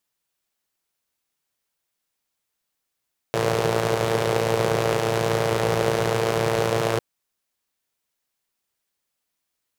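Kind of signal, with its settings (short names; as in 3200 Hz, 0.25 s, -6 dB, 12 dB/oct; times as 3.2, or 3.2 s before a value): four-cylinder engine model, steady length 3.65 s, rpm 3400, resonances 150/440 Hz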